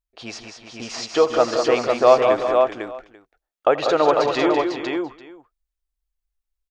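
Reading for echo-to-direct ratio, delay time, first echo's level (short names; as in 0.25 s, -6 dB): -1.0 dB, 84 ms, -18.0 dB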